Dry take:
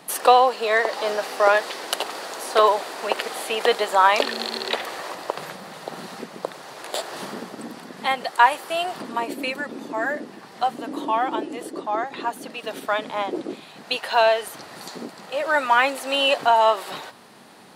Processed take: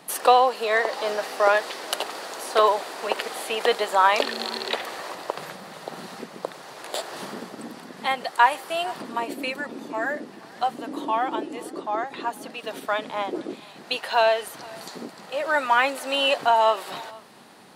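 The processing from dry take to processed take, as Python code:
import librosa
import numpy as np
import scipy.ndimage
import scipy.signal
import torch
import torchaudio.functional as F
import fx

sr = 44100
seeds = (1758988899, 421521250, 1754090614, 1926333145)

y = x + 10.0 ** (-23.5 / 20.0) * np.pad(x, (int(468 * sr / 1000.0), 0))[:len(x)]
y = y * 10.0 ** (-2.0 / 20.0)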